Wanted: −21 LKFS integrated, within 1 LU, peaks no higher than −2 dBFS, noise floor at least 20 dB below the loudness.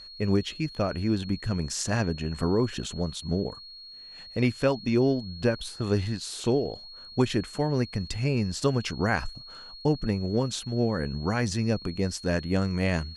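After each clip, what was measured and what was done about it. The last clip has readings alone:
interfering tone 4,300 Hz; level of the tone −43 dBFS; integrated loudness −28.0 LKFS; sample peak −10.5 dBFS; target loudness −21.0 LKFS
→ notch filter 4,300 Hz, Q 30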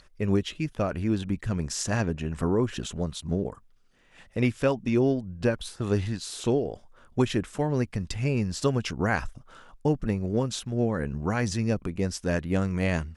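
interfering tone none found; integrated loudness −28.0 LKFS; sample peak −10.5 dBFS; target loudness −21.0 LKFS
→ level +7 dB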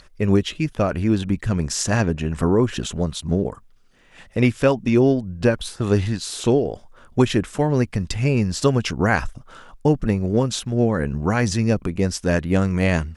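integrated loudness −21.0 LKFS; sample peak −3.5 dBFS; background noise floor −50 dBFS

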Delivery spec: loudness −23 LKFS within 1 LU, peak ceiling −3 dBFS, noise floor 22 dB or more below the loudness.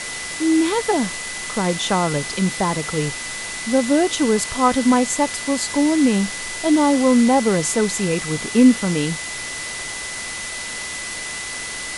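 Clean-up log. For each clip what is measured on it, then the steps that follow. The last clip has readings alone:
interfering tone 2,000 Hz; level of the tone −31 dBFS; background noise floor −30 dBFS; target noise floor −42 dBFS; integrated loudness −19.5 LKFS; sample peak −3.0 dBFS; target loudness −23.0 LKFS
→ notch filter 2,000 Hz, Q 30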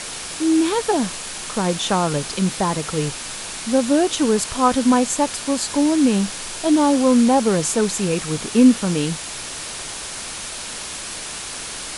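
interfering tone none found; background noise floor −31 dBFS; target noise floor −42 dBFS
→ broadband denoise 11 dB, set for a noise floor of −31 dBFS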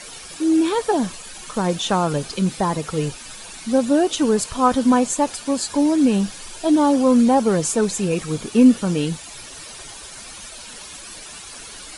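background noise floor −38 dBFS; target noise floor −42 dBFS
→ broadband denoise 6 dB, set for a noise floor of −38 dBFS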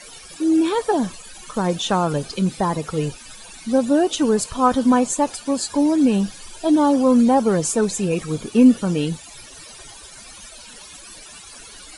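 background noise floor −42 dBFS; integrated loudness −19.5 LKFS; sample peak −3.5 dBFS; target loudness −23.0 LKFS
→ level −3.5 dB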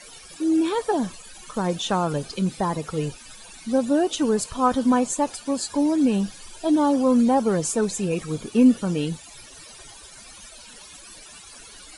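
integrated loudness −23.0 LKFS; sample peak −7.0 dBFS; background noise floor −45 dBFS

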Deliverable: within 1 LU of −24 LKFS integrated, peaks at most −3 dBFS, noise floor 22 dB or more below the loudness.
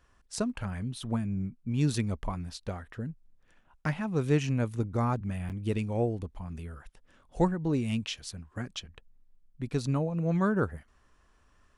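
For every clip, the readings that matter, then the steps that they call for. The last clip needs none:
number of dropouts 1; longest dropout 8.0 ms; integrated loudness −32.0 LKFS; sample peak −12.5 dBFS; target loudness −24.0 LKFS
→ repair the gap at 0:05.49, 8 ms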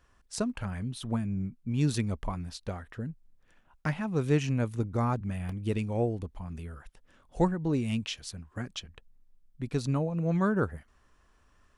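number of dropouts 0; integrated loudness −32.0 LKFS; sample peak −12.5 dBFS; target loudness −24.0 LKFS
→ level +8 dB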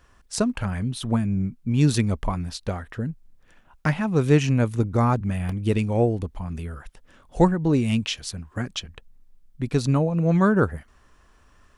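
integrated loudness −24.0 LKFS; sample peak −4.5 dBFS; background noise floor −57 dBFS

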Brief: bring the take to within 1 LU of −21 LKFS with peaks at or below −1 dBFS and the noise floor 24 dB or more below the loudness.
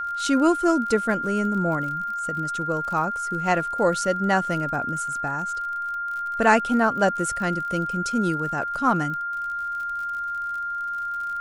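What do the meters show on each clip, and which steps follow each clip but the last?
crackle rate 50 per second; interfering tone 1,400 Hz; level of the tone −26 dBFS; integrated loudness −24.0 LKFS; sample peak −4.5 dBFS; target loudness −21.0 LKFS
→ click removal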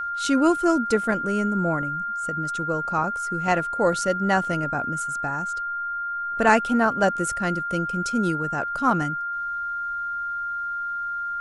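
crackle rate 0 per second; interfering tone 1,400 Hz; level of the tone −26 dBFS
→ notch filter 1,400 Hz, Q 30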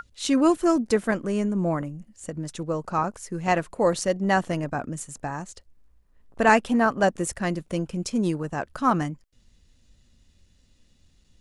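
interfering tone none found; integrated loudness −25.0 LKFS; sample peak −5.5 dBFS; target loudness −21.0 LKFS
→ level +4 dB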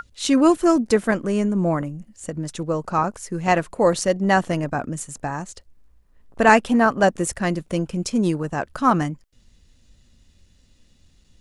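integrated loudness −21.0 LKFS; sample peak −1.5 dBFS; background noise floor −57 dBFS

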